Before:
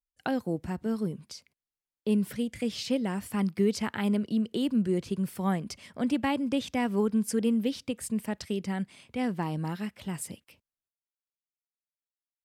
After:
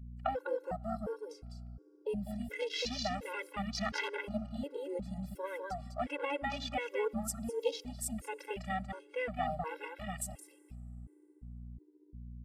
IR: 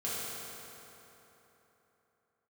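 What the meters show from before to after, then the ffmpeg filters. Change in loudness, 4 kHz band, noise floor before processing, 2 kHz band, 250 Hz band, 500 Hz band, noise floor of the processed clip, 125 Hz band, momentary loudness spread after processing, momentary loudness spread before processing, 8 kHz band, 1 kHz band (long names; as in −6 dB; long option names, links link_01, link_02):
−8.0 dB, −2.5 dB, below −85 dBFS, −1.0 dB, −14.5 dB, −4.5 dB, −63 dBFS, −9.5 dB, 15 LU, 9 LU, −3.0 dB, −1.0 dB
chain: -filter_complex "[0:a]highpass=470,aecho=1:1:1.5:0.8,acompressor=threshold=-29dB:ratio=6,aecho=1:1:202:0.668,aeval=exprs='val(0)+0.00447*(sin(2*PI*60*n/s)+sin(2*PI*2*60*n/s)/2+sin(2*PI*3*60*n/s)/3+sin(2*PI*4*60*n/s)/4+sin(2*PI*5*60*n/s)/5)':channel_layout=same,afwtdn=0.00891,asplit=2[link_01][link_02];[1:a]atrim=start_sample=2205[link_03];[link_02][link_03]afir=irnorm=-1:irlink=0,volume=-29dB[link_04];[link_01][link_04]amix=inputs=2:normalize=0,afftfilt=real='re*gt(sin(2*PI*1.4*pts/sr)*(1-2*mod(floor(b*sr/1024/280),2)),0)':imag='im*gt(sin(2*PI*1.4*pts/sr)*(1-2*mod(floor(b*sr/1024/280),2)),0)':win_size=1024:overlap=0.75,volume=2dB"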